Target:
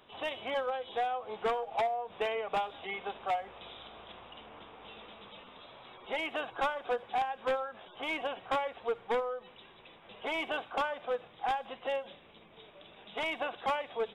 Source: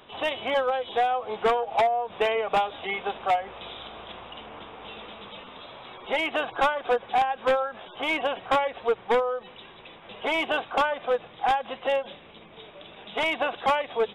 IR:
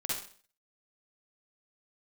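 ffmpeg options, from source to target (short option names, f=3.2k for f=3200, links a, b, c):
-filter_complex "[0:a]asplit=2[a][b];[1:a]atrim=start_sample=2205,highshelf=f=5.5k:g=9[c];[b][c]afir=irnorm=-1:irlink=0,volume=-24.5dB[d];[a][d]amix=inputs=2:normalize=0,volume=-9dB"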